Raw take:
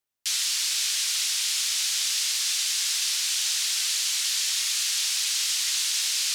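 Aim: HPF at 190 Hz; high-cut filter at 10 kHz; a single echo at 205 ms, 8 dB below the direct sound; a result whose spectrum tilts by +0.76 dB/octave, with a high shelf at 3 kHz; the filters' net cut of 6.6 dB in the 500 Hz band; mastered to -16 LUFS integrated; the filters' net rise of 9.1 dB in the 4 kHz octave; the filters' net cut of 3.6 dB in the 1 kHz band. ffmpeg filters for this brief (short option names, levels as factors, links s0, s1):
-af "highpass=190,lowpass=10000,equalizer=f=500:t=o:g=-7,equalizer=f=1000:t=o:g=-5.5,highshelf=f=3000:g=4.5,equalizer=f=4000:t=o:g=8,aecho=1:1:205:0.398,volume=0.891"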